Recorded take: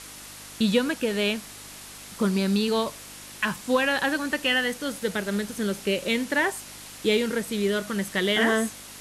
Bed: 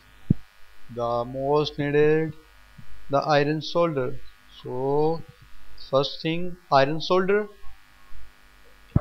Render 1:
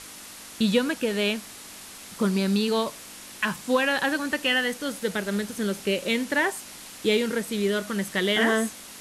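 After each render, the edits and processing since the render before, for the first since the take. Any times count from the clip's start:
hum removal 50 Hz, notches 3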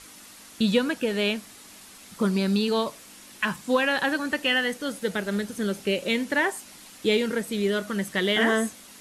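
broadband denoise 6 dB, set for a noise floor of −43 dBFS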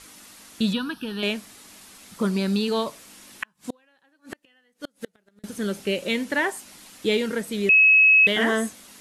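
0:00.73–0:01.23: phaser with its sweep stopped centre 2,100 Hz, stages 6
0:03.43–0:05.44: gate with flip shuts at −19 dBFS, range −38 dB
0:07.69–0:08.27: beep over 2,570 Hz −11.5 dBFS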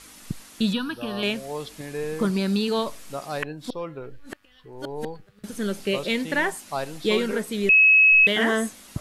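mix in bed −11 dB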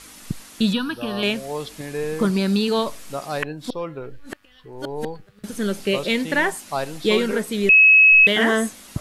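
level +3.5 dB

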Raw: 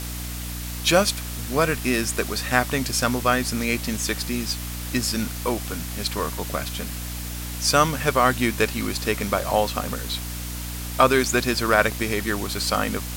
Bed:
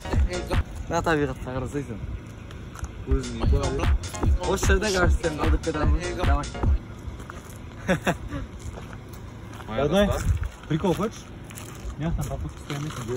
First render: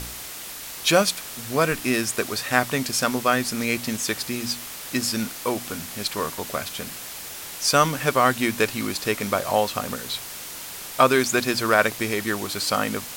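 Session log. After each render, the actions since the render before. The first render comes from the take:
hum removal 60 Hz, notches 5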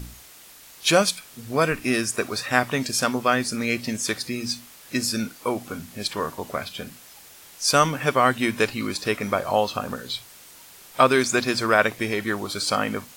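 noise reduction from a noise print 11 dB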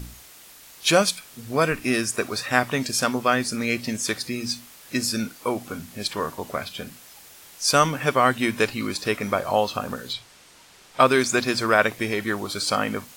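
0:10.13–0:11.00: high-frequency loss of the air 54 metres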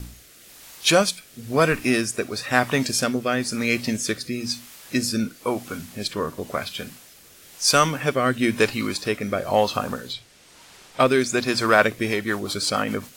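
rotating-speaker cabinet horn 1 Hz, later 7.5 Hz, at 0:11.68
in parallel at −6 dB: hard clipping −15.5 dBFS, distortion −13 dB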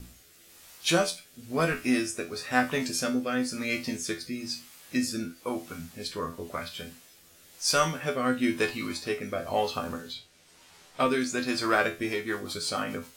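tuned comb filter 84 Hz, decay 0.24 s, harmonics all, mix 90%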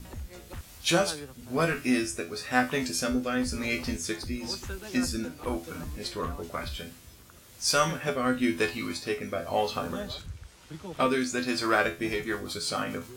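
mix in bed −17.5 dB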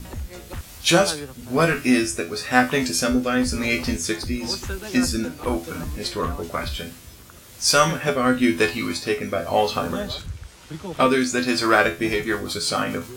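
level +7.5 dB

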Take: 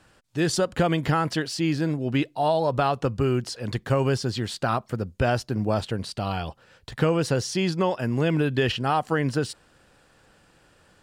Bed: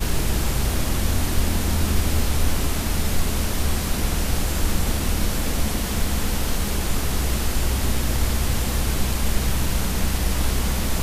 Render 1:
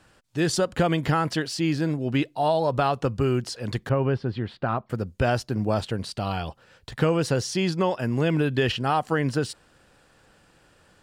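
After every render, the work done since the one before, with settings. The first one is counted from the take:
0:03.89–0:04.90: high-frequency loss of the air 420 metres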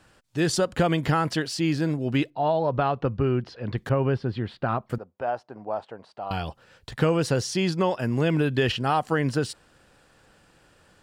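0:02.30–0:03.78: high-frequency loss of the air 290 metres
0:04.98–0:06.31: resonant band-pass 800 Hz, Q 2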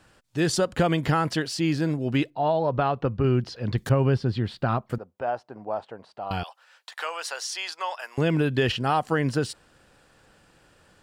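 0:03.24–0:04.80: bass and treble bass +4 dB, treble +11 dB
0:06.43–0:08.18: high-pass filter 770 Hz 24 dB per octave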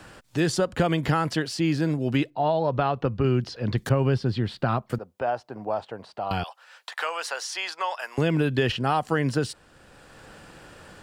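multiband upward and downward compressor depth 40%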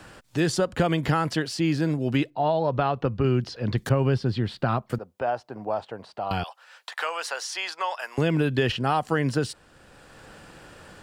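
no processing that can be heard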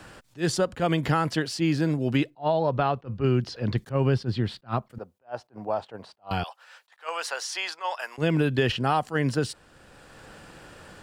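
level that may rise only so fast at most 330 dB per second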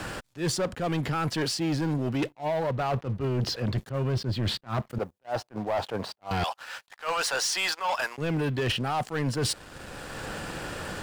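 reversed playback
downward compressor 16 to 1, threshold −31 dBFS, peak gain reduction 14.5 dB
reversed playback
leveller curve on the samples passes 3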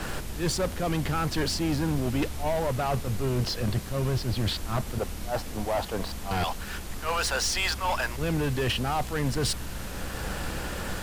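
mix in bed −14 dB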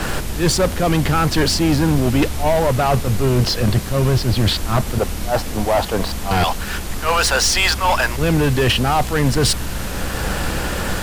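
level +11 dB

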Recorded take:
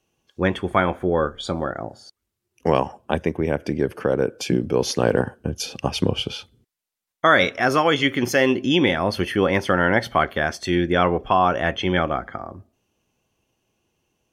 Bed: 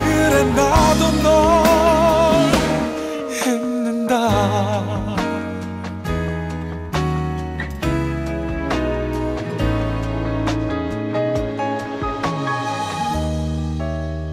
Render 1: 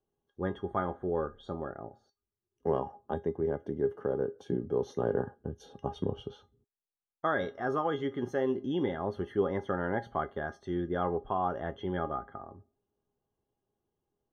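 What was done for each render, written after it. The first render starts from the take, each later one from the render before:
moving average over 18 samples
tuned comb filter 410 Hz, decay 0.17 s, harmonics all, mix 80%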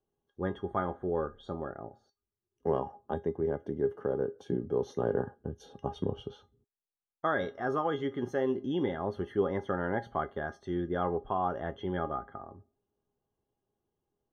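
no processing that can be heard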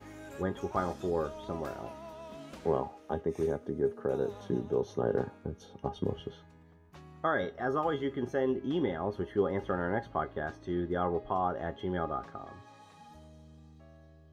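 mix in bed −32 dB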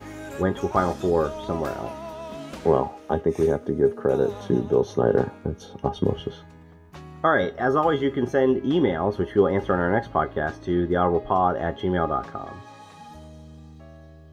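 level +10 dB

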